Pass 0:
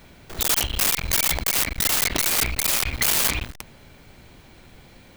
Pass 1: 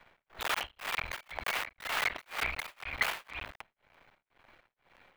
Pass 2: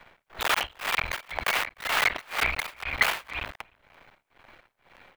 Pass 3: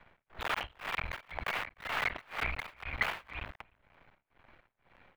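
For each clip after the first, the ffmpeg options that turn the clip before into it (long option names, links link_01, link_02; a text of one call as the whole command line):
ffmpeg -i in.wav -filter_complex "[0:a]acrusher=bits=7:dc=4:mix=0:aa=0.000001,acrossover=split=580 2900:gain=0.158 1 0.0794[link_01][link_02][link_03];[link_01][link_02][link_03]amix=inputs=3:normalize=0,tremolo=f=2:d=0.99" out.wav
ffmpeg -i in.wav -filter_complex "[0:a]asplit=2[link_01][link_02];[link_02]adelay=303.2,volume=-28dB,highshelf=frequency=4000:gain=-6.82[link_03];[link_01][link_03]amix=inputs=2:normalize=0,volume=7.5dB" out.wav
ffmpeg -i in.wav -af "bass=frequency=250:gain=6,treble=frequency=4000:gain=-11,volume=-8dB" out.wav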